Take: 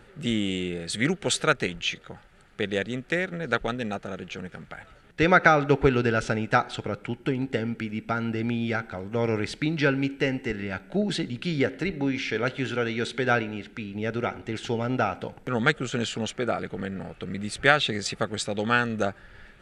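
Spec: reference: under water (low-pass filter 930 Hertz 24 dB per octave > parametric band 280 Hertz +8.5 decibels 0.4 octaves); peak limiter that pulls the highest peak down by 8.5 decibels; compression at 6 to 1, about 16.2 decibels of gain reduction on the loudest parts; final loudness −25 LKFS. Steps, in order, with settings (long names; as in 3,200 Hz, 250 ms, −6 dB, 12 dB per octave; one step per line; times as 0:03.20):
downward compressor 6 to 1, threshold −32 dBFS
brickwall limiter −26.5 dBFS
low-pass filter 930 Hz 24 dB per octave
parametric band 280 Hz +8.5 dB 0.4 octaves
level +12 dB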